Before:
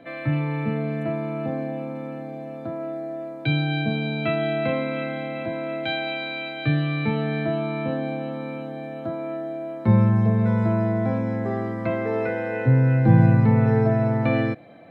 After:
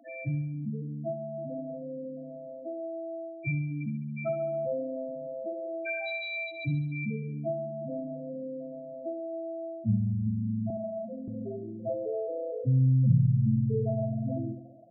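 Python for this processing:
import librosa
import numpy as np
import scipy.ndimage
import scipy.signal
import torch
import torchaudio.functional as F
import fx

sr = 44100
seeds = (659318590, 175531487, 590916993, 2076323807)

p1 = fx.spec_topn(x, sr, count=4)
p2 = fx.highpass(p1, sr, hz=250.0, slope=24, at=(10.7, 11.28))
p3 = fx.low_shelf(p2, sr, hz=450.0, db=-8.5)
y = p3 + fx.echo_feedback(p3, sr, ms=69, feedback_pct=56, wet_db=-10, dry=0)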